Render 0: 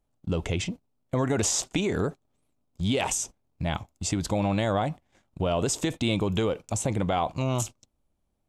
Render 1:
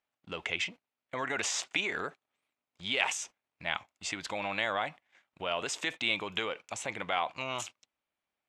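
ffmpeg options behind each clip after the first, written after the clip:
-af "bandpass=f=2.1k:t=q:w=1.5:csg=0,volume=5.5dB"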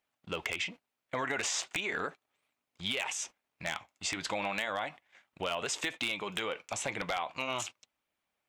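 -af "flanger=delay=0.3:depth=7.3:regen=-68:speed=0.37:shape=triangular,acompressor=threshold=-37dB:ratio=10,aeval=exprs='0.0316*(abs(mod(val(0)/0.0316+3,4)-2)-1)':c=same,volume=8dB"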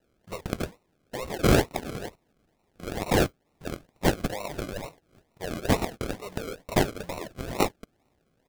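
-af "aecho=1:1:1.9:0.91,aexciter=amount=7.7:drive=6.8:freq=5.2k,acrusher=samples=38:mix=1:aa=0.000001:lfo=1:lforange=22.8:lforate=2.2,volume=-3.5dB"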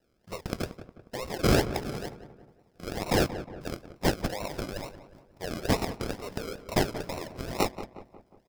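-filter_complex "[0:a]equalizer=f=5.1k:w=7.4:g=9,asplit=2[a][b];[b]asoftclip=type=hard:threshold=-20dB,volume=-8dB[c];[a][c]amix=inputs=2:normalize=0,asplit=2[d][e];[e]adelay=180,lowpass=f=1.9k:p=1,volume=-12dB,asplit=2[f][g];[g]adelay=180,lowpass=f=1.9k:p=1,volume=0.5,asplit=2[h][i];[i]adelay=180,lowpass=f=1.9k:p=1,volume=0.5,asplit=2[j][k];[k]adelay=180,lowpass=f=1.9k:p=1,volume=0.5,asplit=2[l][m];[m]adelay=180,lowpass=f=1.9k:p=1,volume=0.5[n];[d][f][h][j][l][n]amix=inputs=6:normalize=0,volume=-4.5dB"

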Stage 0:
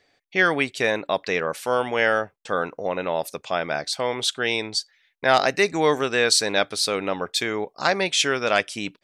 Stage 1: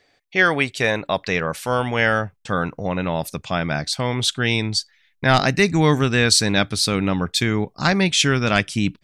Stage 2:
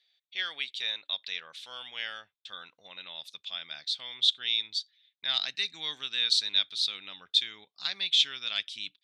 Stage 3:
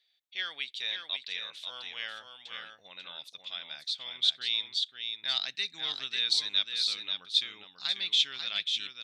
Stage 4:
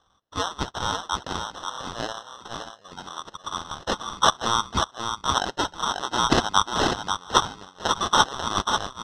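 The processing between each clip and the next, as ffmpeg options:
-af "asubboost=boost=10.5:cutoff=160,volume=3dB"
-af "bandpass=f=3.6k:t=q:w=7.1:csg=0,volume=2dB"
-af "aecho=1:1:541:0.501,volume=-2dB"
-af "acrusher=samples=19:mix=1:aa=0.000001,lowpass=f=5k:t=q:w=2.1,volume=7dB"

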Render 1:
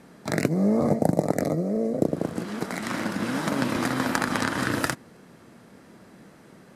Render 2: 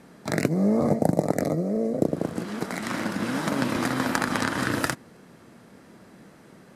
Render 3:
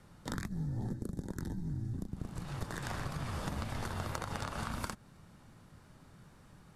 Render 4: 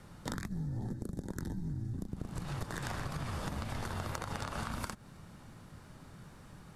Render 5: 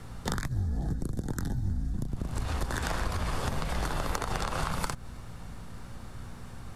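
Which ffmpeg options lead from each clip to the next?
-af anull
-af "acompressor=threshold=-27dB:ratio=6,afreqshift=-350,volume=-7dB"
-af "acompressor=threshold=-40dB:ratio=4,volume=5dB"
-af "aeval=exprs='val(0)+0.00355*(sin(2*PI*60*n/s)+sin(2*PI*2*60*n/s)/2+sin(2*PI*3*60*n/s)/3+sin(2*PI*4*60*n/s)/4+sin(2*PI*5*60*n/s)/5)':c=same,afreqshift=-64,volume=7.5dB"

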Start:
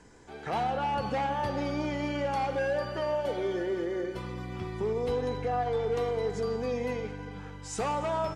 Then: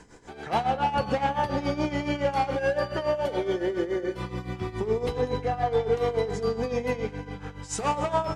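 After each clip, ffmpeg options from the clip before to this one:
-af "bandreject=f=81.84:t=h:w=4,bandreject=f=163.68:t=h:w=4,bandreject=f=245.52:t=h:w=4,bandreject=f=327.36:t=h:w=4,bandreject=f=409.2:t=h:w=4,bandreject=f=491.04:t=h:w=4,bandreject=f=572.88:t=h:w=4,bandreject=f=654.72:t=h:w=4,bandreject=f=736.56:t=h:w=4,bandreject=f=818.4:t=h:w=4,bandreject=f=900.24:t=h:w=4,bandreject=f=982.08:t=h:w=4,bandreject=f=1.06392k:t=h:w=4,bandreject=f=1.14576k:t=h:w=4,bandreject=f=1.2276k:t=h:w=4,bandreject=f=1.30944k:t=h:w=4,bandreject=f=1.39128k:t=h:w=4,bandreject=f=1.47312k:t=h:w=4,bandreject=f=1.55496k:t=h:w=4,bandreject=f=1.6368k:t=h:w=4,bandreject=f=1.71864k:t=h:w=4,bandreject=f=1.80048k:t=h:w=4,bandreject=f=1.88232k:t=h:w=4,bandreject=f=1.96416k:t=h:w=4,bandreject=f=2.046k:t=h:w=4,bandreject=f=2.12784k:t=h:w=4,bandreject=f=2.20968k:t=h:w=4,bandreject=f=2.29152k:t=h:w=4,bandreject=f=2.37336k:t=h:w=4,bandreject=f=2.4552k:t=h:w=4,bandreject=f=2.53704k:t=h:w=4,bandreject=f=2.61888k:t=h:w=4,tremolo=f=7.1:d=0.76,volume=7.5dB"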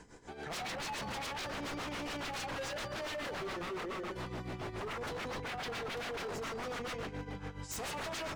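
-af "aeval=exprs='0.0299*(abs(mod(val(0)/0.0299+3,4)-2)-1)':c=same,volume=-4.5dB"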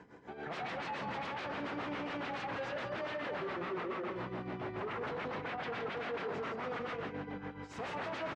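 -af "highpass=120,lowpass=2.4k,aecho=1:1:167:0.398,volume=1dB"

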